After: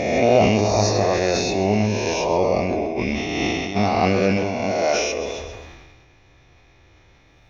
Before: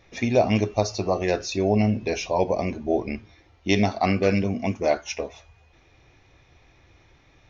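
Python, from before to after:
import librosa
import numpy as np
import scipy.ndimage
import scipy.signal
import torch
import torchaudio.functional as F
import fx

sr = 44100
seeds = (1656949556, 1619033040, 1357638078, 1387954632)

y = fx.spec_swells(x, sr, rise_s=1.78)
y = fx.doubler(y, sr, ms=20.0, db=-4.0, at=(0.67, 1.07))
y = fx.over_compress(y, sr, threshold_db=-25.0, ratio=-1.0, at=(2.63, 3.75), fade=0.02)
y = fx.low_shelf(y, sr, hz=150.0, db=-9.0, at=(4.37, 4.98))
y = fx.echo_feedback(y, sr, ms=134, feedback_pct=33, wet_db=-12.5)
y = fx.sustainer(y, sr, db_per_s=33.0)
y = y * librosa.db_to_amplitude(-1.0)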